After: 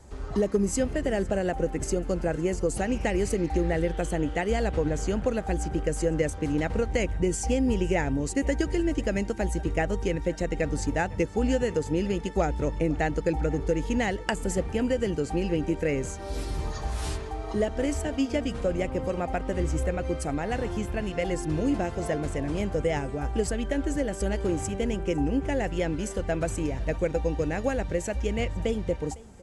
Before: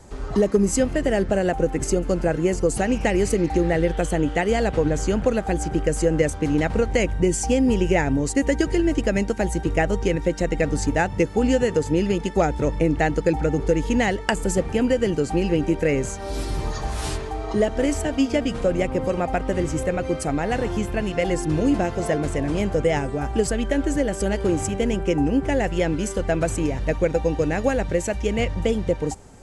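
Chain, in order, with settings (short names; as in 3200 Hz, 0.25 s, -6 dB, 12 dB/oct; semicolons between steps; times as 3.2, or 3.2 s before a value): bell 66 Hz +11.5 dB 0.27 oct; on a send: echo 0.506 s -22.5 dB; on the sum: gain -6 dB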